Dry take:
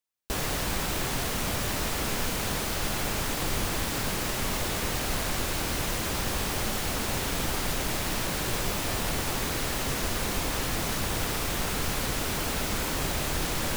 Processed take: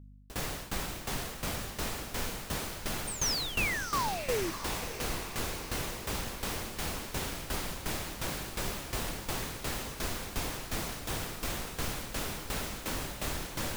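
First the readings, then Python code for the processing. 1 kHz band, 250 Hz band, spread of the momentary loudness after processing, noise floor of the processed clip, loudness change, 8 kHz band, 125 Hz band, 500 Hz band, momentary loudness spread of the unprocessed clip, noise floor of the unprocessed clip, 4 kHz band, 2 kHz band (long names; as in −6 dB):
−5.5 dB, −7.0 dB, 6 LU, −44 dBFS, −6.0 dB, −6.0 dB, −7.0 dB, −5.5 dB, 0 LU, −31 dBFS, −6.0 dB, −5.5 dB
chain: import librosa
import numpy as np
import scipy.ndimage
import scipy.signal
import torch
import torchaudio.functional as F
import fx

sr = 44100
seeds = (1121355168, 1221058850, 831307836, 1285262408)

y = fx.spec_paint(x, sr, seeds[0], shape='fall', start_s=3.07, length_s=1.44, low_hz=310.0, high_hz=9100.0, level_db=-26.0)
y = fx.add_hum(y, sr, base_hz=50, snr_db=18)
y = fx.tremolo_shape(y, sr, shape='saw_down', hz=2.8, depth_pct=90)
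y = fx.echo_diffused(y, sr, ms=663, feedback_pct=64, wet_db=-11)
y = y * 10.0 ** (-3.5 / 20.0)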